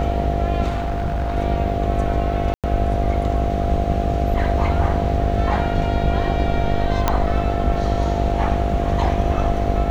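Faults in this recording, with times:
buzz 50 Hz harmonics 16 -24 dBFS
tone 690 Hz -25 dBFS
0.67–1.37 clipped -18.5 dBFS
2.54–2.64 gap 97 ms
7.08 pop -3 dBFS

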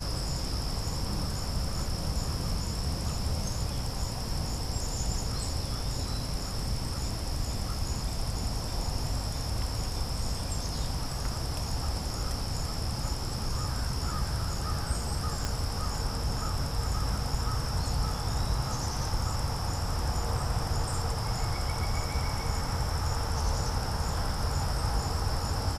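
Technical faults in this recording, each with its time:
15.45 pop -16 dBFS

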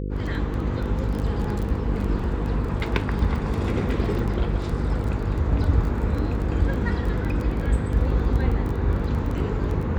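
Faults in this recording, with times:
buzz 50 Hz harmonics 10 -28 dBFS
crackle 15/s -27 dBFS

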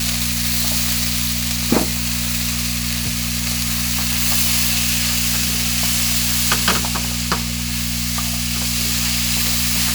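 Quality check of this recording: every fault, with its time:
hum 60 Hz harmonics 4 -25 dBFS

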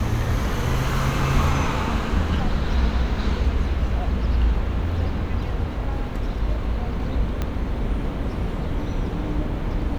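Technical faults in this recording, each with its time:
7.42 pop -12 dBFS

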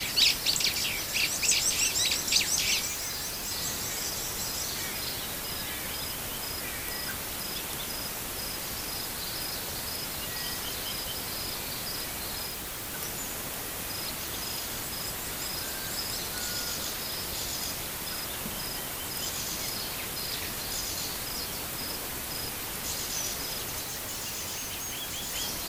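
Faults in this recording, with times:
2.86–3.52 clipped -30.5 dBFS
7.11 pop
12.47–12.95 clipped -33 dBFS
14.28 pop
19.25 pop
23.82–25.34 clipped -32 dBFS

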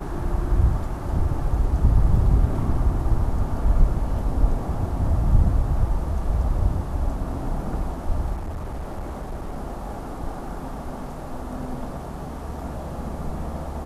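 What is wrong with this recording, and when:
8.34–9.58 clipped -26.5 dBFS

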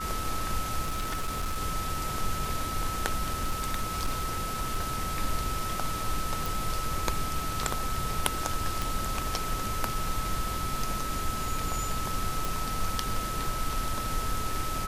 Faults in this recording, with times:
tone 1300 Hz -34 dBFS
0.81–1.59 clipped -26.5 dBFS
3.33–4.84 clipped -23 dBFS
6.46 pop
8.82 pop
12.45 pop

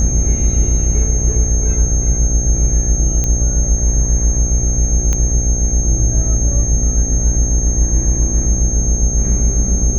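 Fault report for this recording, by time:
buzz 60 Hz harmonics 13 -18 dBFS
tone 6400 Hz -20 dBFS
3.24 pop -6 dBFS
5.13 pop -6 dBFS

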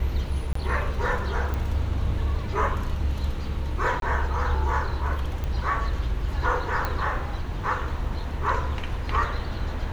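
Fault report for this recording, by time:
0.53–0.55 gap 24 ms
1.54 pop
4–4.02 gap 22 ms
5.44 pop -18 dBFS
6.85 pop -13 dBFS

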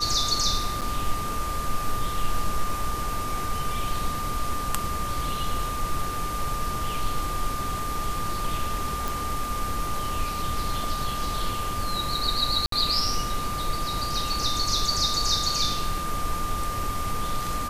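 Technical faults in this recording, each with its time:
tone 1200 Hz -30 dBFS
0.81–0.82 gap 7.5 ms
9.08 pop
12.66–12.72 gap 63 ms

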